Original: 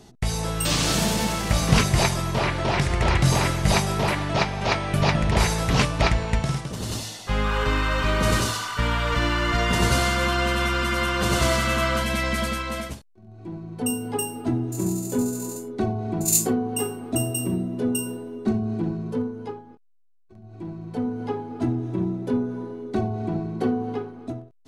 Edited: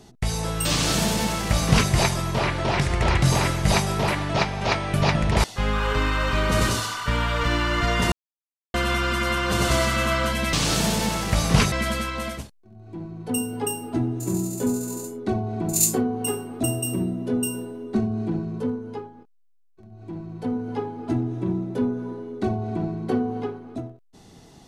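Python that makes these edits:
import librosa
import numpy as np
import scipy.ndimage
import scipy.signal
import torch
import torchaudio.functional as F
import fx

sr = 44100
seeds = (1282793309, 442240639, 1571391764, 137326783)

y = fx.edit(x, sr, fx.duplicate(start_s=0.71, length_s=1.19, to_s=12.24),
    fx.cut(start_s=5.44, length_s=1.71),
    fx.silence(start_s=9.83, length_s=0.62), tone=tone)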